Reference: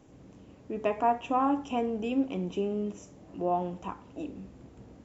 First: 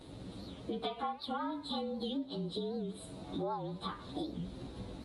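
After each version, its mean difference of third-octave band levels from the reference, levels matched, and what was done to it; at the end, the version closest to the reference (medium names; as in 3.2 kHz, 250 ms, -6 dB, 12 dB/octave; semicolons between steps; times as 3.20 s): 9.0 dB: frequency axis rescaled in octaves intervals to 111%; peaking EQ 3.9 kHz +14.5 dB 0.48 oct; compression 8:1, threshold -44 dBFS, peak gain reduction 22 dB; warped record 78 rpm, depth 160 cents; trim +8.5 dB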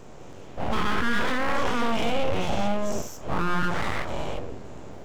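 13.0 dB: every event in the spectrogram widened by 240 ms; hum notches 60/120/180/240/300/360/420 Hz; peak limiter -21 dBFS, peak gain reduction 10.5 dB; full-wave rectifier; trim +7 dB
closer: first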